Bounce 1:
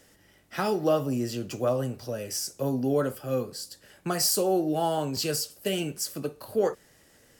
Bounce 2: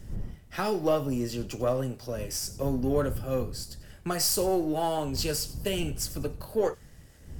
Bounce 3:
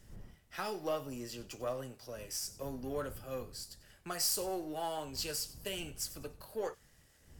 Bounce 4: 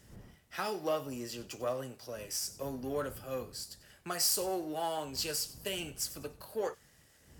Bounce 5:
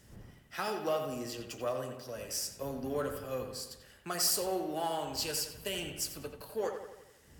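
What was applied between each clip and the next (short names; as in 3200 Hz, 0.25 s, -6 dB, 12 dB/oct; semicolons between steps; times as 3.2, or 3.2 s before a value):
half-wave gain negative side -3 dB; wind noise 98 Hz -39 dBFS; thin delay 95 ms, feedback 31%, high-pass 2400 Hz, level -17 dB
low shelf 490 Hz -10.5 dB; gain -6 dB
HPF 94 Hz 6 dB/oct; gain +3 dB
analogue delay 85 ms, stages 2048, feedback 55%, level -7 dB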